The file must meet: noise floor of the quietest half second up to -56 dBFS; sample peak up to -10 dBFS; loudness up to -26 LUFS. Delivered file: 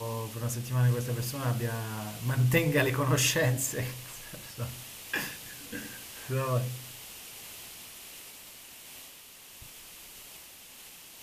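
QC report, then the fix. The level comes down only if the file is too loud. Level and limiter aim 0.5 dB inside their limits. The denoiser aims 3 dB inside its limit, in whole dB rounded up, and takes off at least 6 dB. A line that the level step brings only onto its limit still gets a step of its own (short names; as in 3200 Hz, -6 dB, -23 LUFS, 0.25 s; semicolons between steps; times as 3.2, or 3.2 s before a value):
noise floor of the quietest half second -50 dBFS: fail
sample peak -12.0 dBFS: OK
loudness -30.5 LUFS: OK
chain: denoiser 9 dB, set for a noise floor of -50 dBFS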